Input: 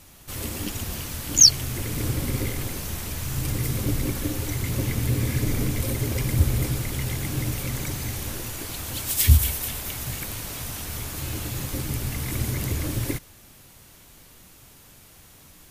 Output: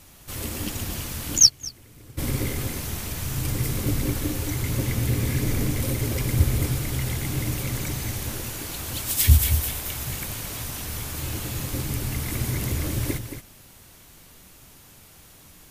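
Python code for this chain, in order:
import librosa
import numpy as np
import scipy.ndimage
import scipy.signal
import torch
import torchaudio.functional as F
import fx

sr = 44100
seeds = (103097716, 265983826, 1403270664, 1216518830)

y = x + 10.0 ** (-8.5 / 20.0) * np.pad(x, (int(224 * sr / 1000.0), 0))[:len(x)]
y = fx.upward_expand(y, sr, threshold_db=-23.0, expansion=2.5, at=(1.38, 2.17), fade=0.02)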